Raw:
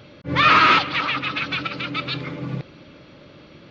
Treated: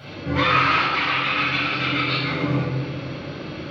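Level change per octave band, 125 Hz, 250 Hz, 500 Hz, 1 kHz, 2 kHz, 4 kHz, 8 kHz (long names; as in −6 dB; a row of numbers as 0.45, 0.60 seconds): +5.0 dB, +3.5 dB, +3.0 dB, −2.5 dB, −0.5 dB, −0.5 dB, can't be measured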